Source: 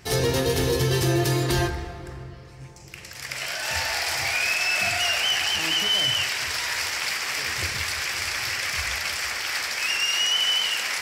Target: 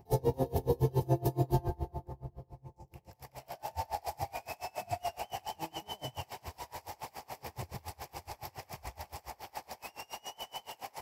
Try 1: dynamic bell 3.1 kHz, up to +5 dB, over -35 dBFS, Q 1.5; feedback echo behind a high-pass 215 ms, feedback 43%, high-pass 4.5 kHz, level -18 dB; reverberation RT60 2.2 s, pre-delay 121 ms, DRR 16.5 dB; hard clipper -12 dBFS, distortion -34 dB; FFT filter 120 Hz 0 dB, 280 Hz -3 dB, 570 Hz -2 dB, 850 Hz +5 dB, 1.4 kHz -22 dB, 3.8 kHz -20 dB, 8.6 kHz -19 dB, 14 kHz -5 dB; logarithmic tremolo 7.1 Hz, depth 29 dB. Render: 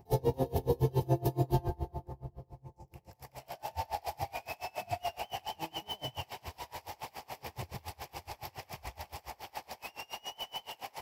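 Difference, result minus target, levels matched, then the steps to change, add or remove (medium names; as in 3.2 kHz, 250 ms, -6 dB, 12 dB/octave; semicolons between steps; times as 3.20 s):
4 kHz band +3.5 dB
change: dynamic bell 8 kHz, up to +5 dB, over -35 dBFS, Q 1.5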